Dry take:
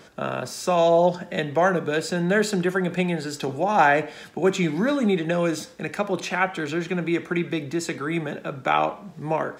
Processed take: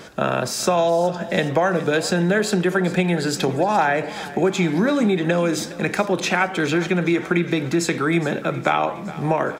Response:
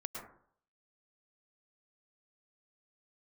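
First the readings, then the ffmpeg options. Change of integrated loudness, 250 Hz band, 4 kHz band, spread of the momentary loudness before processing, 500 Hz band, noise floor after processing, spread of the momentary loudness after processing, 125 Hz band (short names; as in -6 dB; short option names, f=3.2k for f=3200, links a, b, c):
+3.0 dB, +4.5 dB, +5.5 dB, 10 LU, +2.5 dB, -33 dBFS, 4 LU, +5.0 dB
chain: -filter_complex "[0:a]acompressor=threshold=-24dB:ratio=6,asplit=2[a][b];[b]aecho=0:1:414|828|1242|1656|2070:0.141|0.0819|0.0475|0.0276|0.016[c];[a][c]amix=inputs=2:normalize=0,volume=8.5dB"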